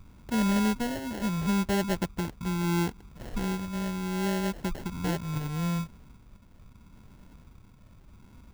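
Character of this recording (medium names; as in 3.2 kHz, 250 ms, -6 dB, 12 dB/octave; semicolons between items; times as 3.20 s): phasing stages 6, 0.73 Hz, lowest notch 430–1000 Hz; aliases and images of a low sample rate 1.2 kHz, jitter 0%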